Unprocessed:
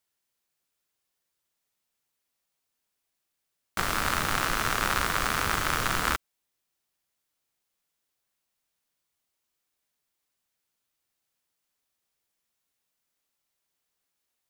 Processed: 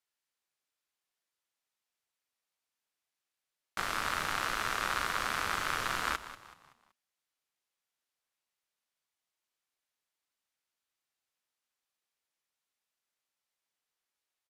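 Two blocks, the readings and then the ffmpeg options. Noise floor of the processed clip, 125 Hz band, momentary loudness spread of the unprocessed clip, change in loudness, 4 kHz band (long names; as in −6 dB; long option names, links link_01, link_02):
below −85 dBFS, −12.5 dB, 4 LU, −6.0 dB, −5.5 dB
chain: -filter_complex "[0:a]asplit=2[link_01][link_02];[link_02]highpass=frequency=720:poles=1,volume=8dB,asoftclip=type=tanh:threshold=-7.5dB[link_03];[link_01][link_03]amix=inputs=2:normalize=0,lowpass=frequency=5200:poles=1,volume=-6dB,aresample=32000,aresample=44100,asplit=5[link_04][link_05][link_06][link_07][link_08];[link_05]adelay=189,afreqshift=-62,volume=-14dB[link_09];[link_06]adelay=378,afreqshift=-124,volume=-22dB[link_10];[link_07]adelay=567,afreqshift=-186,volume=-29.9dB[link_11];[link_08]adelay=756,afreqshift=-248,volume=-37.9dB[link_12];[link_04][link_09][link_10][link_11][link_12]amix=inputs=5:normalize=0,volume=-8dB"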